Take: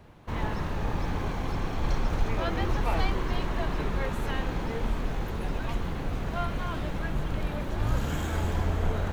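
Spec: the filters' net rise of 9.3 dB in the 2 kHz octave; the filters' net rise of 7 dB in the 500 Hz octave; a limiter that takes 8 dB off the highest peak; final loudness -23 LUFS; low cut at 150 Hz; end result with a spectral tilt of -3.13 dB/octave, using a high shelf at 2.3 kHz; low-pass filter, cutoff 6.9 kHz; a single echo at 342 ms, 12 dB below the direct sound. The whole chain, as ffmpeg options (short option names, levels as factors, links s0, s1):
-af "highpass=150,lowpass=6900,equalizer=f=500:t=o:g=8,equalizer=f=2000:t=o:g=8,highshelf=f=2300:g=6.5,alimiter=limit=0.0944:level=0:latency=1,aecho=1:1:342:0.251,volume=2.24"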